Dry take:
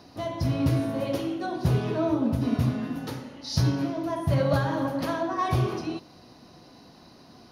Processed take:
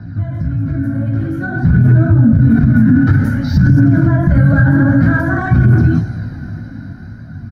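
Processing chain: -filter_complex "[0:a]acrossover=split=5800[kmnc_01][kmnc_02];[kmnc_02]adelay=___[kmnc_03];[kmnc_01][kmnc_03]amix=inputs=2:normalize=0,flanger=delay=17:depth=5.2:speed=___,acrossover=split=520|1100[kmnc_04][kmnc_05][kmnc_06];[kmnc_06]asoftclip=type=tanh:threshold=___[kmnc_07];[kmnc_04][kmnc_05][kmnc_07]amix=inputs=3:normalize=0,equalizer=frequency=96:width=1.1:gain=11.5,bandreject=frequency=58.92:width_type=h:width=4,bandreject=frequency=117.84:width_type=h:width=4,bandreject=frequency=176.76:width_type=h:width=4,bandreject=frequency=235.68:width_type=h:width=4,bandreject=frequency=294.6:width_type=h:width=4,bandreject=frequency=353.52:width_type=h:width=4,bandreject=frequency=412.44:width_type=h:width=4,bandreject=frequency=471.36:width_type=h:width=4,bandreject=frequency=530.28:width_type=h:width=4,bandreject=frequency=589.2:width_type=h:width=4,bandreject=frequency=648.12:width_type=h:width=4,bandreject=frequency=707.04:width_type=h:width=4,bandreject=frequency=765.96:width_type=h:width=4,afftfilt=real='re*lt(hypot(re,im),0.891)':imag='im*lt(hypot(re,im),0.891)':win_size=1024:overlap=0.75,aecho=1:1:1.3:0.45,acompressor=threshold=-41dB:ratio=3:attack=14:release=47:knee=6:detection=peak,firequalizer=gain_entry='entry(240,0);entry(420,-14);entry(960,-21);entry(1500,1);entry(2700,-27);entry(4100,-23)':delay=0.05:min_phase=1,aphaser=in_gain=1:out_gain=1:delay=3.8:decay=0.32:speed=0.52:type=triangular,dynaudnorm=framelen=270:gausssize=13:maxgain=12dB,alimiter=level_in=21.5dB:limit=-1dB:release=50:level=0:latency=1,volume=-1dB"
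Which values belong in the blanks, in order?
170, 1.8, -39dB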